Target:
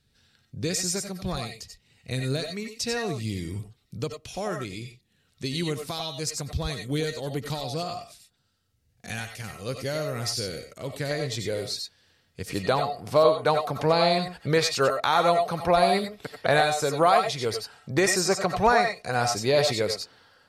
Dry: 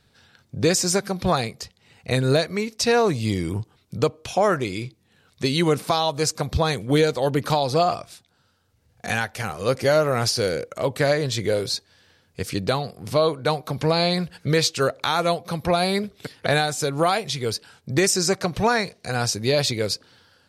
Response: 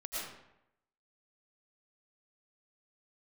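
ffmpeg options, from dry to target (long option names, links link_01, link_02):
-filter_complex "[0:a]asetnsamples=nb_out_samples=441:pad=0,asendcmd='11.11 equalizer g -3.5;12.51 equalizer g 7',equalizer=frequency=870:width_type=o:width=2.3:gain=-9.5[link_01];[1:a]atrim=start_sample=2205,atrim=end_sample=4410[link_02];[link_01][link_02]afir=irnorm=-1:irlink=0"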